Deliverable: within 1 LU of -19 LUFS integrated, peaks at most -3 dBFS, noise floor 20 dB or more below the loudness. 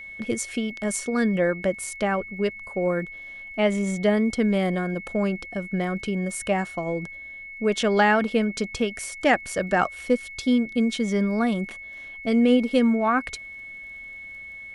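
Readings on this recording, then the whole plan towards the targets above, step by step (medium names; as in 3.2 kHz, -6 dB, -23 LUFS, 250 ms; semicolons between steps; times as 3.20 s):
tick rate 26 per s; steady tone 2.2 kHz; tone level -37 dBFS; loudness -24.5 LUFS; peak level -6.5 dBFS; loudness target -19.0 LUFS
-> de-click; band-stop 2.2 kHz, Q 30; trim +5.5 dB; peak limiter -3 dBFS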